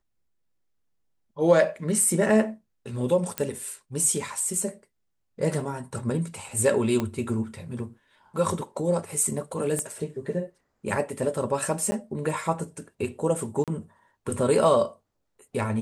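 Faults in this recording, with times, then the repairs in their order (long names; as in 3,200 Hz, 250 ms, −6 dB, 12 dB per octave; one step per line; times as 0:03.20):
0:03.38: click −9 dBFS
0:07.00: click −14 dBFS
0:09.79: click −18 dBFS
0:11.91–0:11.92: drop-out 10 ms
0:13.64–0:13.68: drop-out 37 ms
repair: click removal
repair the gap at 0:11.91, 10 ms
repair the gap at 0:13.64, 37 ms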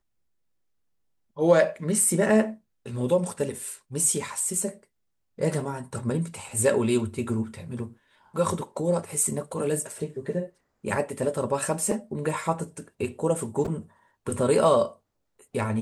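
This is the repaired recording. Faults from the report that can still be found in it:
0:07.00: click
0:09.79: click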